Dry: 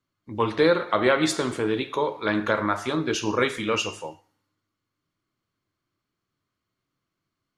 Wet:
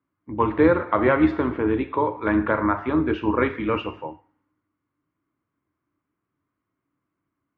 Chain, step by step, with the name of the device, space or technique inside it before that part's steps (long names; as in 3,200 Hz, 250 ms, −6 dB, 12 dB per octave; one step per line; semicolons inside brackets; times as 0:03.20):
sub-octave bass pedal (sub-octave generator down 2 octaves, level −5 dB; loudspeaker in its box 78–2,300 Hz, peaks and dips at 85 Hz +3 dB, 290 Hz +9 dB, 970 Hz +5 dB)